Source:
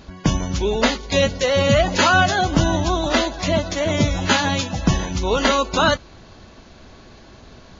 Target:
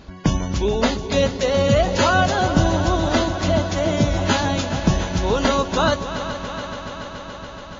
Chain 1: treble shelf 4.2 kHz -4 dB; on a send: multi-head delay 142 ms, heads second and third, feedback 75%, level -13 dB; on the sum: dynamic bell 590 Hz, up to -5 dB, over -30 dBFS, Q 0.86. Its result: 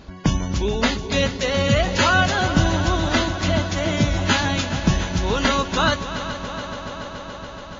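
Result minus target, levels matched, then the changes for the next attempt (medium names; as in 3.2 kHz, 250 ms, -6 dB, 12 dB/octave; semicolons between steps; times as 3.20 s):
2 kHz band +3.5 dB
change: dynamic bell 2.1 kHz, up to -5 dB, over -30 dBFS, Q 0.86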